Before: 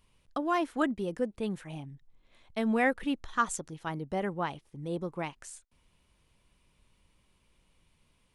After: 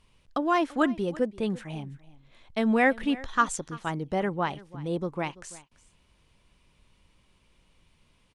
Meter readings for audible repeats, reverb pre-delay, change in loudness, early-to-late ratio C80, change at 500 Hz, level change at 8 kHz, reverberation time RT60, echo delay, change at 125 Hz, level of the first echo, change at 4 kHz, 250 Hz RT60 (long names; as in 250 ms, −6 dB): 1, no reverb audible, +4.5 dB, no reverb audible, +4.5 dB, +2.5 dB, no reverb audible, 337 ms, +4.5 dB, −20.0 dB, +5.0 dB, no reverb audible